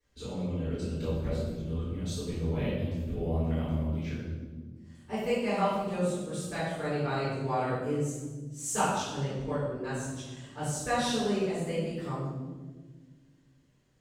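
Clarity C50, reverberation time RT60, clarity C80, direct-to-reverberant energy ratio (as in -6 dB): -1.0 dB, 1.5 s, 1.5 dB, -13.5 dB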